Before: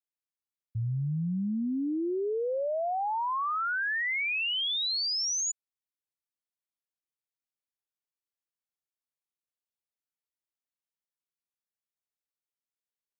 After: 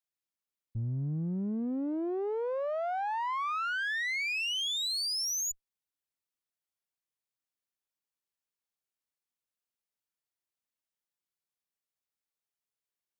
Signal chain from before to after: single-diode clipper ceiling -34 dBFS

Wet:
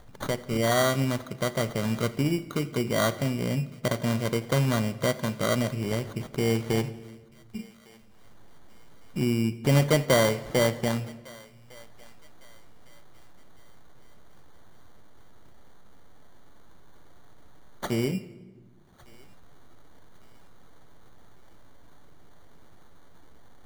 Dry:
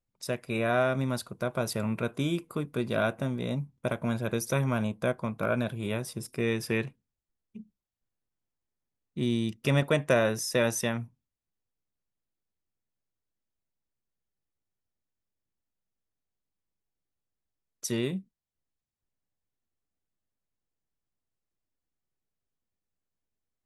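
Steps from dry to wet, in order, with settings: low-pass that closes with the level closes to 1.8 kHz, closed at -25.5 dBFS; upward compressor, threshold -31 dBFS; sample-and-hold 17×; thinning echo 1156 ms, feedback 42%, high-pass 920 Hz, level -21 dB; reverberation RT60 1.5 s, pre-delay 7 ms, DRR 14.5 dB; modulated delay 85 ms, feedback 55%, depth 75 cents, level -22.5 dB; trim +3 dB

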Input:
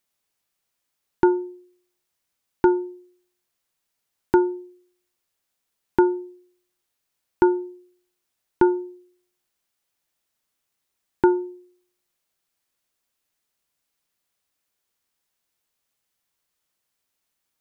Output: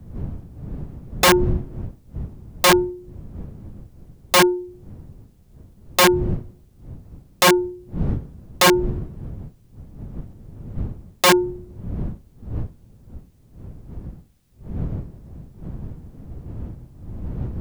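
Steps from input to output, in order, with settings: wind noise 130 Hz -39 dBFS; integer overflow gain 16 dB; trim +8 dB

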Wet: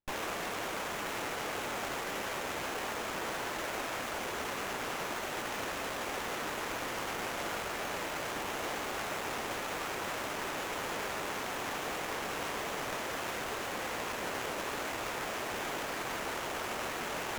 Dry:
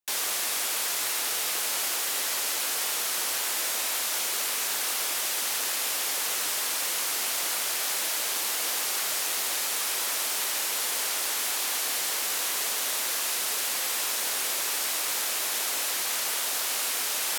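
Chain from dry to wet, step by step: tilt EQ -3 dB/octave; sliding maximum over 9 samples

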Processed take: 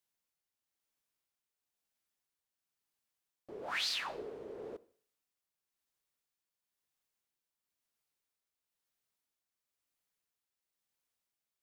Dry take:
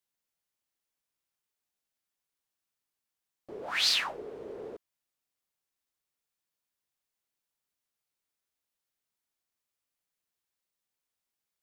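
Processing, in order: on a send at -21 dB: reverberation RT60 0.50 s, pre-delay 43 ms; on the sum: tremolo 1 Hz, depth 40%; compression 6:1, threshold -33 dBFS, peak gain reduction 10 dB

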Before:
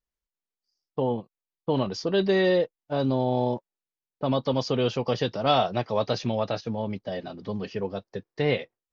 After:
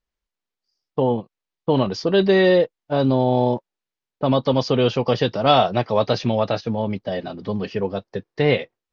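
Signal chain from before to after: low-pass 5.3 kHz 12 dB/octave; trim +6.5 dB

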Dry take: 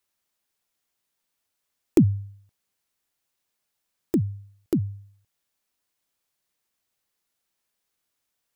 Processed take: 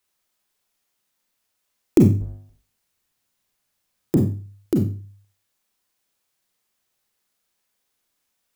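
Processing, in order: 2.20–4.17 s: octave divider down 1 oct, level +1 dB; Schroeder reverb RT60 0.35 s, combs from 30 ms, DRR 2 dB; trim +2.5 dB

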